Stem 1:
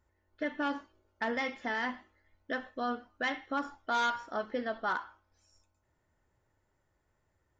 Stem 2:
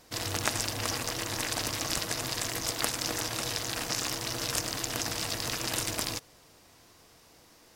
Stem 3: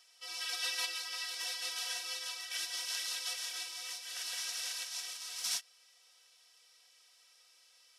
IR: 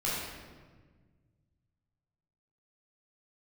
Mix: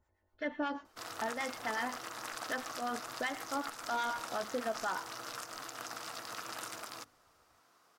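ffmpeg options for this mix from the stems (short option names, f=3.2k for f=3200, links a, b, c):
-filter_complex "[0:a]acrossover=split=910[a][b];[a]aeval=exprs='val(0)*(1-0.7/2+0.7/2*cos(2*PI*8.1*n/s))':c=same[c];[b]aeval=exprs='val(0)*(1-0.7/2-0.7/2*cos(2*PI*8.1*n/s))':c=same[d];[c][d]amix=inputs=2:normalize=0,volume=0.5dB[e];[1:a]highpass=180,equalizer=f=1.3k:t=o:w=0.59:g=13.5,bandreject=f=50:t=h:w=6,bandreject=f=100:t=h:w=6,bandreject=f=150:t=h:w=6,bandreject=f=200:t=h:w=6,bandreject=f=250:t=h:w=6,bandreject=f=300:t=h:w=6,bandreject=f=350:t=h:w=6,bandreject=f=400:t=h:w=6,adelay=850,volume=-13.5dB[f];[e][f]amix=inputs=2:normalize=0,equalizer=f=740:w=1.8:g=4.5,alimiter=level_in=1.5dB:limit=-24dB:level=0:latency=1:release=139,volume=-1.5dB"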